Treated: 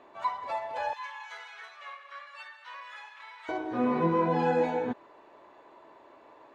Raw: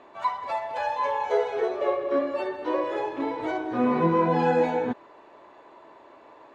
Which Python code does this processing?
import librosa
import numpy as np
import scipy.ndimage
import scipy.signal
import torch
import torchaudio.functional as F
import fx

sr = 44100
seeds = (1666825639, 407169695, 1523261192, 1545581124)

y = fx.highpass(x, sr, hz=1300.0, slope=24, at=(0.93, 3.49))
y = y * 10.0 ** (-4.0 / 20.0)